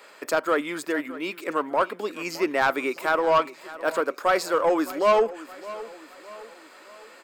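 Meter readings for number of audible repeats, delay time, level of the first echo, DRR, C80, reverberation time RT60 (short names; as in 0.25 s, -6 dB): 3, 0.614 s, -17.0 dB, none, none, none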